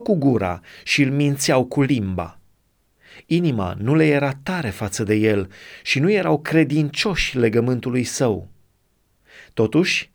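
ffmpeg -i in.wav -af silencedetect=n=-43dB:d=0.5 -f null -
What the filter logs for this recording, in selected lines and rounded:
silence_start: 2.39
silence_end: 3.05 | silence_duration: 0.65
silence_start: 8.53
silence_end: 9.30 | silence_duration: 0.77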